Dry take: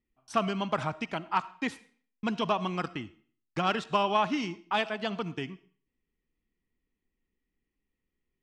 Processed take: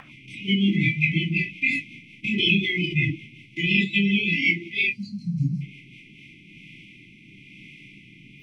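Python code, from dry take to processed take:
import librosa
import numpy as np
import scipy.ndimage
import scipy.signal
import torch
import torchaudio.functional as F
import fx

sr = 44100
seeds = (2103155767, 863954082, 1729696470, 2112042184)

y = fx.bin_compress(x, sr, power=0.2)
y = fx.brickwall_bandstop(y, sr, low_hz=420.0, high_hz=2000.0)
y = fx.spec_box(y, sr, start_s=4.9, length_s=0.71, low_hz=300.0, high_hz=3900.0, gain_db=-27)
y = fx.graphic_eq_10(y, sr, hz=(125, 250, 500, 1000, 2000, 4000, 8000), db=(7, -9, -11, 11, 9, -4, -7))
y = fx.room_shoebox(y, sr, seeds[0], volume_m3=410.0, walls='furnished', distance_m=2.2)
y = fx.noise_reduce_blind(y, sr, reduce_db=21)
y = fx.notch_comb(y, sr, f0_hz=300.0, at=(3.66, 5.53))
y = fx.rotary_switch(y, sr, hz=5.5, then_hz=1.0, switch_at_s=5.73)
y = fx.pre_swell(y, sr, db_per_s=41.0, at=(2.24, 2.96))
y = y * librosa.db_to_amplitude(7.0)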